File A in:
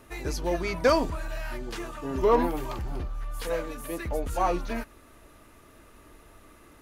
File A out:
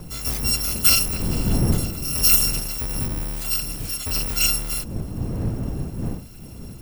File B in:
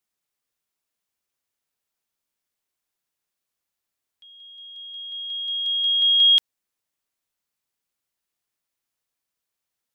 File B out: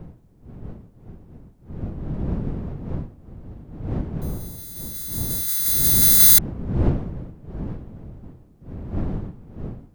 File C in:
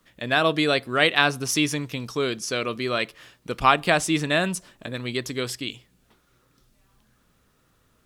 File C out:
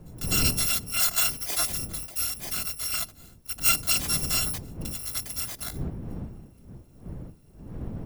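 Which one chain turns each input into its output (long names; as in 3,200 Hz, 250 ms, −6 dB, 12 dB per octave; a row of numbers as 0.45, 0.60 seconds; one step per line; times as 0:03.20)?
samples in bit-reversed order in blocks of 256 samples
wind on the microphone 170 Hz −33 dBFS
normalise the peak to −6 dBFS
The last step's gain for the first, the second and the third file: +5.0, +4.0, −4.5 decibels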